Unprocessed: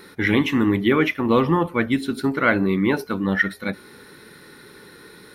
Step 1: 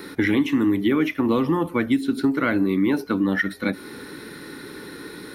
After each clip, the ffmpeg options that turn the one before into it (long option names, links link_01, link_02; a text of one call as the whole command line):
ffmpeg -i in.wav -filter_complex "[0:a]equalizer=frequency=290:width_type=o:width=0.41:gain=9.5,acrossover=split=210|5600[link_01][link_02][link_03];[link_01]acompressor=threshold=-36dB:ratio=4[link_04];[link_02]acompressor=threshold=-27dB:ratio=4[link_05];[link_03]acompressor=threshold=-53dB:ratio=4[link_06];[link_04][link_05][link_06]amix=inputs=3:normalize=0,volume=5.5dB" out.wav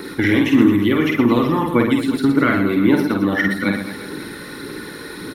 ffmpeg -i in.wav -af "aphaser=in_gain=1:out_gain=1:delay=2:decay=0.35:speed=1.7:type=triangular,aecho=1:1:50|120|218|355.2|547.3:0.631|0.398|0.251|0.158|0.1,volume=3.5dB" out.wav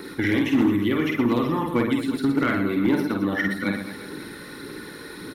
ffmpeg -i in.wav -af "asoftclip=type=hard:threshold=-7.5dB,volume=-6dB" out.wav